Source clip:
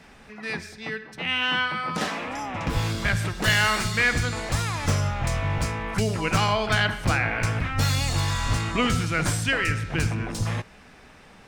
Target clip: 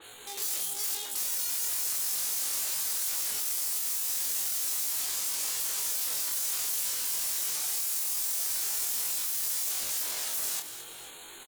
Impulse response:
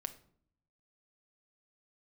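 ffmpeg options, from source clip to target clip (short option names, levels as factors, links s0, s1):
-filter_complex "[0:a]asuperstop=centerf=2800:order=12:qfactor=2.5,acompressor=threshold=0.0355:ratio=4,aeval=exprs='(mod(63.1*val(0)+1,2)-1)/63.1':c=same,bandreject=f=50:t=h:w=6,bandreject=f=100:t=h:w=6,bandreject=f=150:t=h:w=6,bandreject=f=200:t=h:w=6,bandreject=f=250:t=h:w=6,bandreject=f=300:t=h:w=6,bandreject=f=350:t=h:w=6,asetrate=83250,aresample=44100,atempo=0.529732,bass=f=250:g=-12,treble=f=4000:g=7,volume=50.1,asoftclip=hard,volume=0.02,asplit=2[s0][s1];[s1]adelay=26,volume=0.501[s2];[s0][s2]amix=inputs=2:normalize=0,asplit=2[s3][s4];[s4]aecho=0:1:216|479:0.266|0.119[s5];[s3][s5]amix=inputs=2:normalize=0,adynamicequalizer=threshold=0.00178:dfrequency=4500:dqfactor=0.7:tfrequency=4500:tqfactor=0.7:attack=5:release=100:ratio=0.375:range=3.5:mode=boostabove:tftype=highshelf"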